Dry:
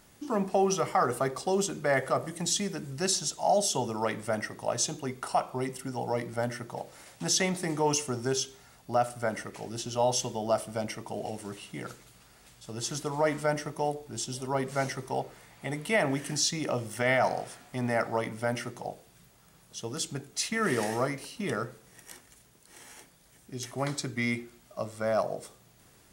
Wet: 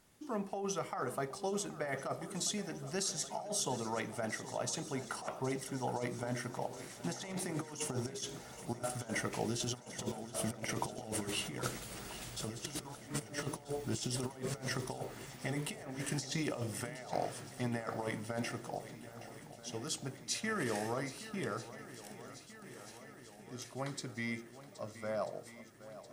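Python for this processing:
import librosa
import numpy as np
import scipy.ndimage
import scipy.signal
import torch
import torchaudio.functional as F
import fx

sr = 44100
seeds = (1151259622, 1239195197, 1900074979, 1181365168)

y = fx.doppler_pass(x, sr, speed_mps=8, closest_m=12.0, pass_at_s=11.79)
y = fx.over_compress(y, sr, threshold_db=-43.0, ratio=-0.5)
y = fx.echo_swing(y, sr, ms=1286, ratio=1.5, feedback_pct=62, wet_db=-15)
y = y * librosa.db_to_amplitude(4.5)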